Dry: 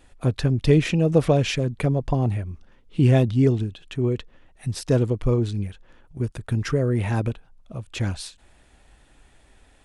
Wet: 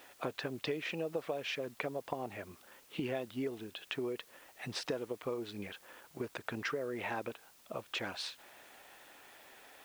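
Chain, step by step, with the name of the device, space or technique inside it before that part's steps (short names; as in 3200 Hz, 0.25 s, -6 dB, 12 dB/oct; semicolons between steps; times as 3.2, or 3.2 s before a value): baby monitor (BPF 490–3600 Hz; compressor 6:1, threshold -40 dBFS, peak gain reduction 21 dB; white noise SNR 22 dB); gain +4.5 dB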